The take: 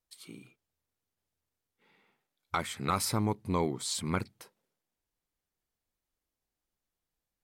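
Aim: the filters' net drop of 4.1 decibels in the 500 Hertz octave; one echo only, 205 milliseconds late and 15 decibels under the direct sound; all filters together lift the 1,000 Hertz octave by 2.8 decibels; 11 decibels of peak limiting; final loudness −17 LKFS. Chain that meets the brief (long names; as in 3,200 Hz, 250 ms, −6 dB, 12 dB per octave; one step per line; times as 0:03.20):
parametric band 500 Hz −6.5 dB
parametric band 1,000 Hz +5 dB
brickwall limiter −25.5 dBFS
single-tap delay 205 ms −15 dB
level +20 dB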